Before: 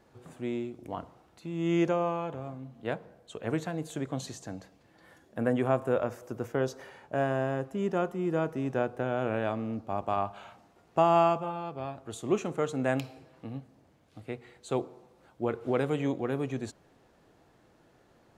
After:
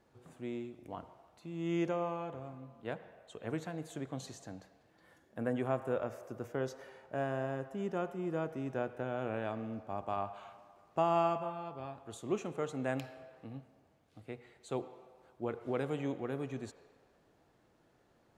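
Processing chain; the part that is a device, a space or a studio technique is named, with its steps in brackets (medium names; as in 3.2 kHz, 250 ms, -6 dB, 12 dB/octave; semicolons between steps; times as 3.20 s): filtered reverb send (on a send: high-pass 440 Hz 24 dB/octave + low-pass 3.9 kHz + reverberation RT60 1.8 s, pre-delay 73 ms, DRR 13 dB); on the sum: trim -7 dB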